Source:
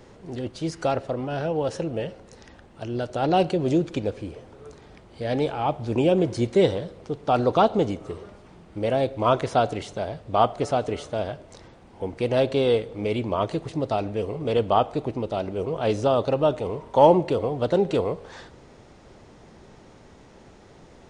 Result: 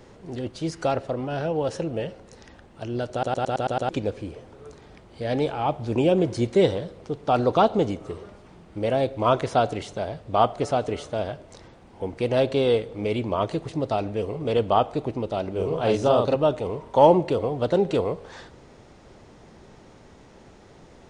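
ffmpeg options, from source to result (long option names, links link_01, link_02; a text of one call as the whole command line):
ffmpeg -i in.wav -filter_complex "[0:a]asettb=1/sr,asplit=3[link_01][link_02][link_03];[link_01]atrim=end=15.514[link_04];[link_02]atrim=start=15.51:end=16.36,asetpts=PTS-STARTPTS,afade=type=in:duration=0.004:curve=qsin,afade=type=out:start_time=0.846:duration=0.004:curve=qsin,asplit=2[link_05][link_06];[link_06]adelay=42,volume=-3dB[link_07];[link_05][link_07]amix=inputs=2:normalize=0,atrim=end_sample=37485[link_08];[link_03]atrim=start=16.356[link_09];[link_04][link_08]acrossfade=duration=0.004:curve1=hsin:curve2=qsin[link_10];[link_10][link_09]acrossfade=duration=0.004:curve1=qsin:curve2=hsin,asplit=8[link_11][link_12][link_13][link_14][link_15][link_16][link_17][link_18];[link_11]atrim=end=3.232[link_19];[link_12]atrim=start=3.118:end=3.232[link_20];[link_13]atrim=start=3.118:end=3.232[link_21];[link_14]atrim=start=3.118:end=3.232[link_22];[link_15]atrim=start=3.118:end=3.232[link_23];[link_16]atrim=start=3.118:end=3.232[link_24];[link_17]atrim=start=3.118:end=3.232[link_25];[link_18]atrim=start=3.888[link_26];[link_19][link_20]acrossfade=duration=0.004:curve1=hsin:curve2=hsin[link_27];[link_27][link_21]acrossfade=duration=0.004:curve1=hsin:curve2=hsin[link_28];[link_28][link_22]acrossfade=duration=0.004:curve1=hsin:curve2=hsin[link_29];[link_29][link_23]acrossfade=duration=0.004:curve1=hsin:curve2=hsin[link_30];[link_30][link_24]acrossfade=duration=0.004:curve1=hsin:curve2=hsin[link_31];[link_31][link_25]acrossfade=duration=0.004:curve1=hsin:curve2=hsin[link_32];[link_32][link_26]acrossfade=duration=0.004:curve1=hsin:curve2=hsin" out.wav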